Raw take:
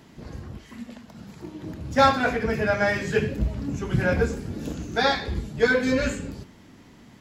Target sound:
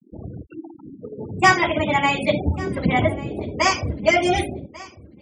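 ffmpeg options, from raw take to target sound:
ffmpeg -i in.wav -filter_complex "[0:a]afftfilt=real='re*gte(hypot(re,im),0.0224)':imag='im*gte(hypot(re,im),0.0224)':win_size=1024:overlap=0.75,asetrate=60858,aresample=44100,asplit=2[link_01][link_02];[link_02]aecho=0:1:1143|2286:0.1|0.019[link_03];[link_01][link_03]amix=inputs=2:normalize=0,volume=3.5dB" out.wav

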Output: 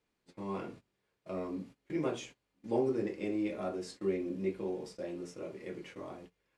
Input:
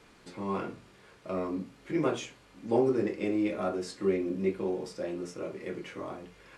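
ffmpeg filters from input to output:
ffmpeg -i in.wav -af "agate=range=-19dB:threshold=-45dB:ratio=16:detection=peak,equalizer=frequency=1300:width=2:gain=-4,volume=-5dB" out.wav

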